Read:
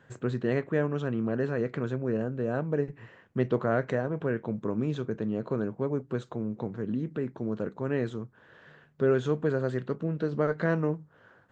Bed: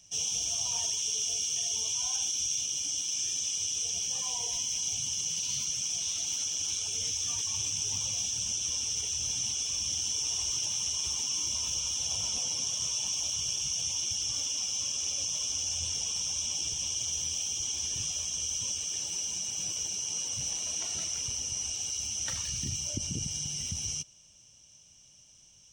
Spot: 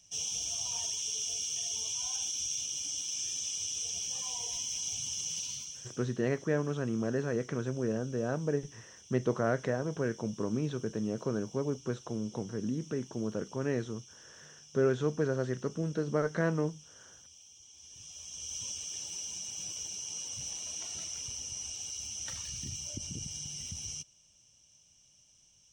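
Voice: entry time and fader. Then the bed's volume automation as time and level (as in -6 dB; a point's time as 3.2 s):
5.75 s, -3.0 dB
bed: 5.4 s -4 dB
6.18 s -23 dB
17.69 s -23 dB
18.57 s -6 dB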